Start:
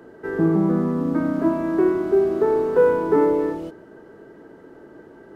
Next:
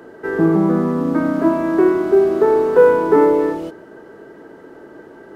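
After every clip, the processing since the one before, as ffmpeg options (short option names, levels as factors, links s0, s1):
-af "lowshelf=f=250:g=-7,volume=2.24"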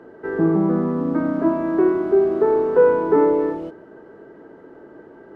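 -af "lowpass=f=1500:p=1,volume=0.708"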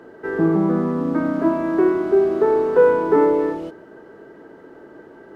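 -af "highshelf=f=2400:g=9.5"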